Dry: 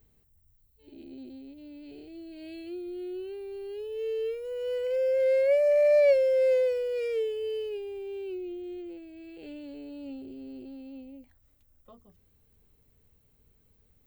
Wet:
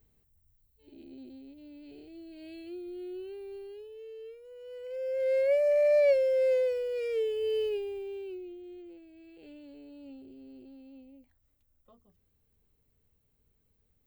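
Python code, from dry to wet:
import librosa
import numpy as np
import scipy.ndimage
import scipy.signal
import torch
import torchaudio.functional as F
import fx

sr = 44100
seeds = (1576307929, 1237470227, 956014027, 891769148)

y = fx.gain(x, sr, db=fx.line((3.55, -3.5), (4.07, -14.0), (4.69, -14.0), (5.38, -2.5), (7.04, -2.5), (7.65, 4.0), (8.56, -7.5)))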